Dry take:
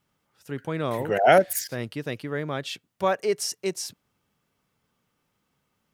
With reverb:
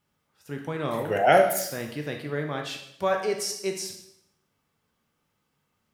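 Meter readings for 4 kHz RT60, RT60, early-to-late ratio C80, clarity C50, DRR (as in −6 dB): 0.70 s, 0.75 s, 9.5 dB, 6.5 dB, 2.5 dB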